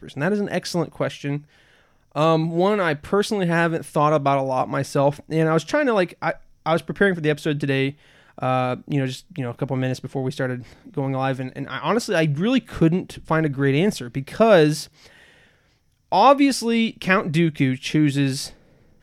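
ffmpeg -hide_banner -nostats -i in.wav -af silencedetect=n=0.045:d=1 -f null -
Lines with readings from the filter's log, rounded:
silence_start: 14.83
silence_end: 16.12 | silence_duration: 1.29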